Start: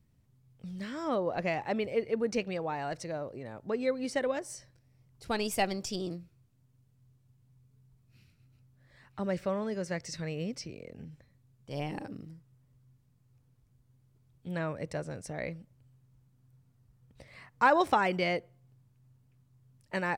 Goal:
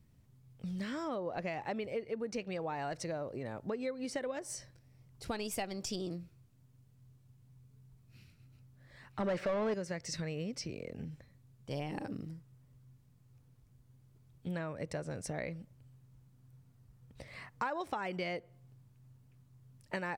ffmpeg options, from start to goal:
-filter_complex "[0:a]acompressor=threshold=0.0126:ratio=6,asettb=1/sr,asplit=3[s0][s1][s2];[s0]atrim=end=9.204[s3];[s1]atrim=start=9.2:end=9.74,asetpts=PTS-STARTPTS,afade=t=in:d=0.004:c=qsin,afade=t=out:st=0.536:d=0.004:c=qsin,asplit=2[s4][s5];[s5]highpass=f=720:p=1,volume=14.1,asoftclip=type=tanh:threshold=0.0422[s6];[s4][s6]amix=inputs=2:normalize=0,lowpass=f=1600:p=1,volume=0.501[s7];[s2]atrim=start=9.736[s8];[s3][s7]acrossfade=d=0.004:c1=hsin:c2=qsin[s9];[s9][s8]acrossfade=d=0.004:c1=qsin:c2=hsin,volume=1.41"

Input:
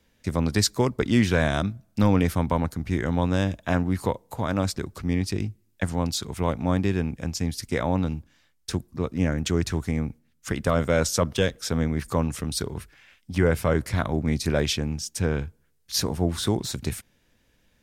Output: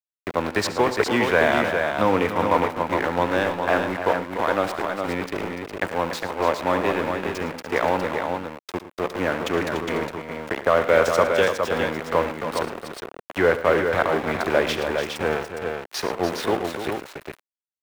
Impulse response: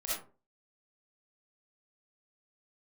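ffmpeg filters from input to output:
-filter_complex "[0:a]aeval=exprs='val(0)*gte(abs(val(0)),0.0473)':c=same,acrossover=split=350 2900:gain=0.112 1 0.178[s0][s1][s2];[s0][s1][s2]amix=inputs=3:normalize=0,aecho=1:1:70|110|292|411:0.158|0.188|0.335|0.531,volume=2.24"

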